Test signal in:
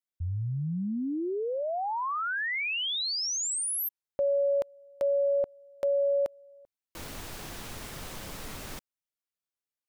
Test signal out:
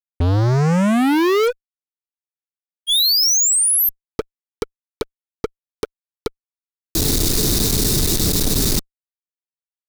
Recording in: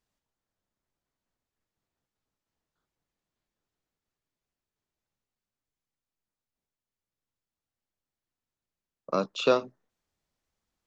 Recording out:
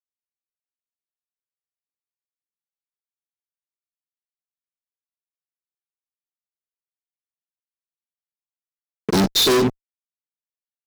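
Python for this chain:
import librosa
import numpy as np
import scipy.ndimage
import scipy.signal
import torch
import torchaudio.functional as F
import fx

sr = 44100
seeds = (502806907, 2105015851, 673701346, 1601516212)

y = scipy.signal.sosfilt(scipy.signal.ellip(5, 1.0, 40, [450.0, 3600.0], 'bandstop', fs=sr, output='sos'), x)
y = fx.fuzz(y, sr, gain_db=50.0, gate_db=-58.0)
y = y * librosa.db_to_amplitude(-1.5)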